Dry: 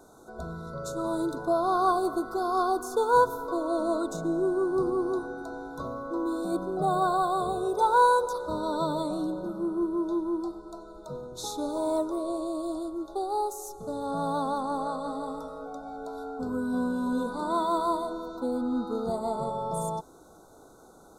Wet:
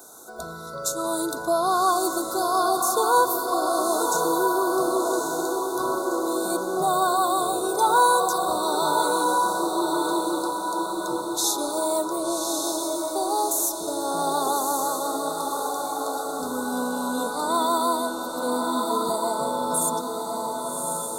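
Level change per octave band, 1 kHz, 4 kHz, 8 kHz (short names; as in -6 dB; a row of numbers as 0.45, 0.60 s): +5.5, +13.0, +18.5 dB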